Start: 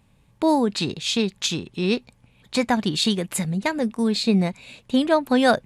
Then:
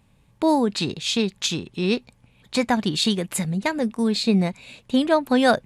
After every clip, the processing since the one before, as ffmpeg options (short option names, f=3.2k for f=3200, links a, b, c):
-af anull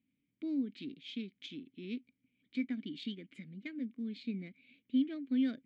-filter_complex "[0:a]adynamicsmooth=sensitivity=1:basefreq=4.4k,asplit=3[a][b][c];[a]bandpass=f=270:t=q:w=8,volume=0dB[d];[b]bandpass=f=2.29k:t=q:w=8,volume=-6dB[e];[c]bandpass=f=3.01k:t=q:w=8,volume=-9dB[f];[d][e][f]amix=inputs=3:normalize=0,volume=-7.5dB"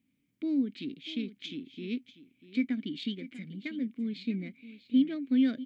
-af "aecho=1:1:642:0.168,volume=6dB"